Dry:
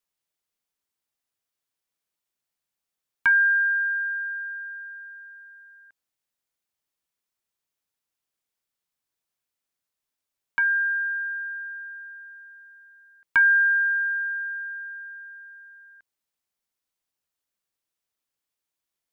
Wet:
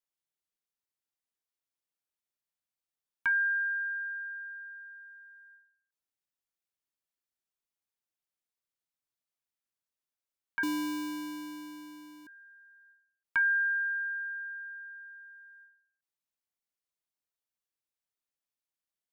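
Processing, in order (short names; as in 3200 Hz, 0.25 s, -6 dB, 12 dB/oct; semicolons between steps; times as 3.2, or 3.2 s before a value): 10.63–12.27 sample-rate reducer 1300 Hz, jitter 0%; ending taper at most 100 dB/s; gain -9 dB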